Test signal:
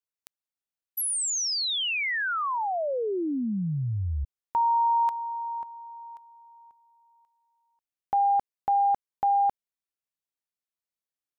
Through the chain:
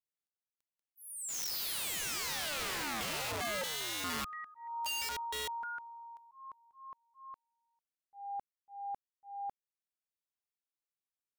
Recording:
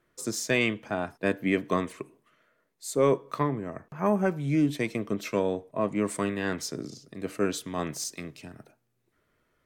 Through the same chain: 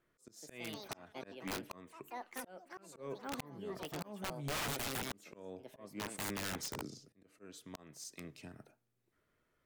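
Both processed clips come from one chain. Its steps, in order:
delay with pitch and tempo change per echo 227 ms, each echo +5 semitones, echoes 3, each echo −6 dB
volume swells 669 ms
wrap-around overflow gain 26 dB
level −7 dB

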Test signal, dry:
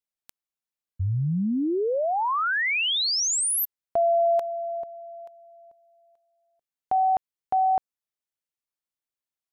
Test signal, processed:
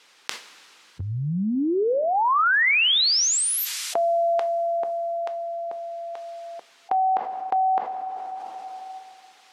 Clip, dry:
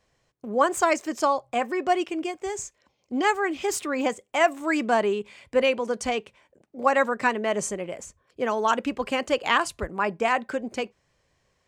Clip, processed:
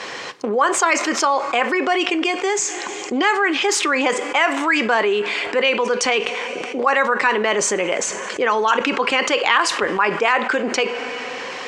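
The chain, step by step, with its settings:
harmonic and percussive parts rebalanced percussive +4 dB
band-pass filter 430–4,600 Hz
parametric band 640 Hz −8.5 dB 0.46 octaves
coupled-rooms reverb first 0.24 s, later 2.4 s, from −22 dB, DRR 13.5 dB
envelope flattener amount 70%
level +1 dB

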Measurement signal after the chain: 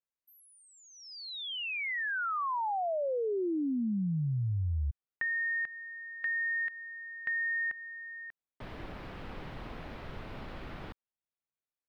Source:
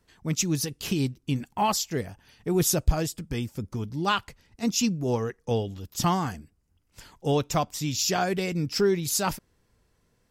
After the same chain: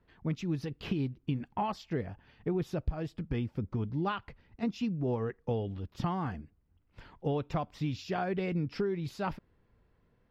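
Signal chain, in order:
downward compressor 10 to 1, threshold −27 dBFS
high-frequency loss of the air 380 metres

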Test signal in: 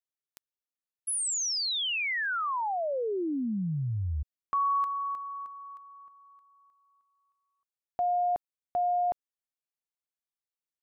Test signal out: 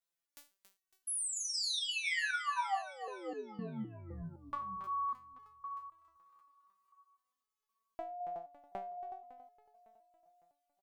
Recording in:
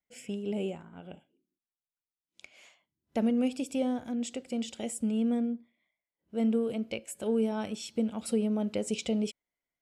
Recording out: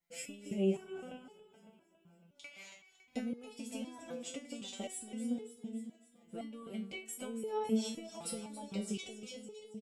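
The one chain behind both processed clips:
downward compressor 2.5 to 1, threshold −42 dBFS
repeating echo 278 ms, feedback 58%, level −11 dB
step-sequenced resonator 3.9 Hz 170–430 Hz
level +15.5 dB

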